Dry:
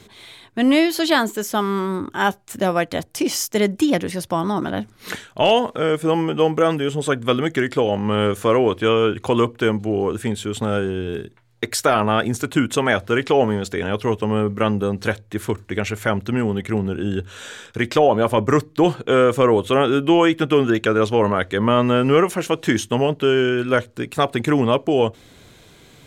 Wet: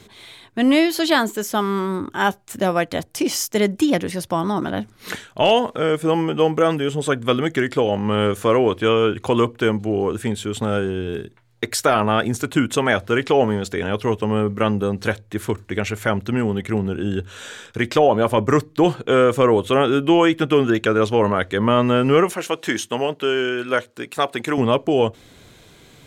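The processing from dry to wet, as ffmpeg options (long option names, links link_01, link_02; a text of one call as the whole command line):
ffmpeg -i in.wav -filter_complex "[0:a]asettb=1/sr,asplit=3[link_01][link_02][link_03];[link_01]atrim=end=22.334[link_04];[link_02]atrim=start=22.33:end=24.58,asetpts=PTS-STARTPTS,afade=type=in:duration=0.004:curve=qsin,afade=type=out:start_time=2.246:duration=0.004:curve=qsin,highpass=frequency=460:poles=1[link_05];[link_03]atrim=start=24.576[link_06];[link_04][link_05]acrossfade=duration=0.004:curve1=hsin:curve2=qsin[link_07];[link_07][link_06]acrossfade=duration=0.004:curve1=qsin:curve2=hsin" out.wav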